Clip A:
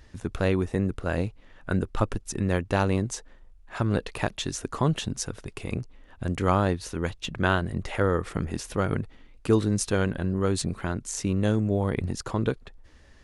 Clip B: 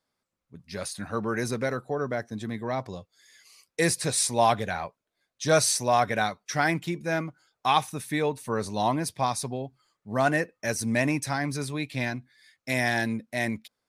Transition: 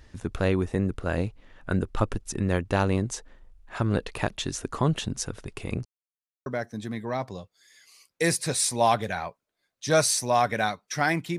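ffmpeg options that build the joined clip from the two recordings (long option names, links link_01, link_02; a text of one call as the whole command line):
ffmpeg -i cue0.wav -i cue1.wav -filter_complex "[0:a]apad=whole_dur=11.38,atrim=end=11.38,asplit=2[link_01][link_02];[link_01]atrim=end=5.85,asetpts=PTS-STARTPTS,afade=type=out:start_time=5.846:duration=0.004:curve=hsin[link_03];[link_02]atrim=start=5.85:end=6.46,asetpts=PTS-STARTPTS,volume=0[link_04];[1:a]atrim=start=2.04:end=6.96,asetpts=PTS-STARTPTS,afade=type=in:duration=0.004:curve=hsin[link_05];[link_03][link_04][link_05]concat=n=3:v=0:a=1" out.wav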